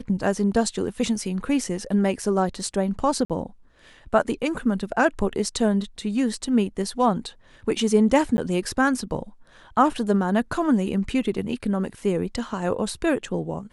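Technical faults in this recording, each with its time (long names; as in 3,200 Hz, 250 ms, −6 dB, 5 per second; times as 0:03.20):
0:03.25–0:03.30: drop-out 47 ms
0:08.37–0:08.38: drop-out 10 ms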